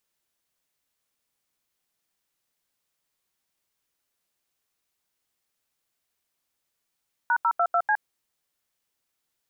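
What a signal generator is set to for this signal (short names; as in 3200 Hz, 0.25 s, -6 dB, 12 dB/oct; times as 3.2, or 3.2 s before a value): DTMF "#022C", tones 65 ms, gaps 82 ms, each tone -21.5 dBFS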